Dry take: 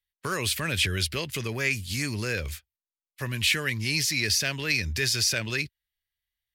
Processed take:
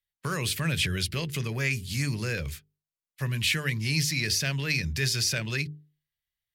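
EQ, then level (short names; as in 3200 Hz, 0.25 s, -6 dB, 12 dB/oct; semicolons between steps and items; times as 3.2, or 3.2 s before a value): bell 150 Hz +11.5 dB 0.59 oct; notches 50/100/150/200/250/300/350/400/450 Hz; -2.5 dB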